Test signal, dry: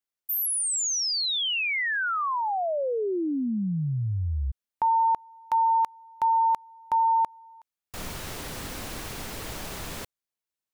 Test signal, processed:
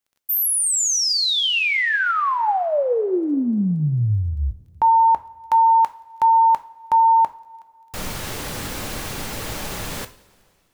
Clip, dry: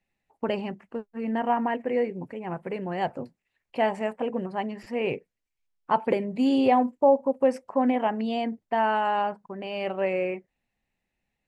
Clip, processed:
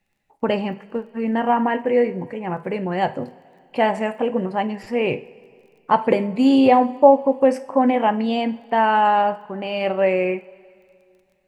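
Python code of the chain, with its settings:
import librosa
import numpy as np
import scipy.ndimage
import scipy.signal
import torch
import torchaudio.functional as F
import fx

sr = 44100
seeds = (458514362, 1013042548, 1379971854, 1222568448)

y = fx.rev_double_slope(x, sr, seeds[0], early_s=0.37, late_s=2.5, knee_db=-19, drr_db=9.0)
y = fx.dmg_crackle(y, sr, seeds[1], per_s=16.0, level_db=-55.0)
y = F.gain(torch.from_numpy(y), 6.5).numpy()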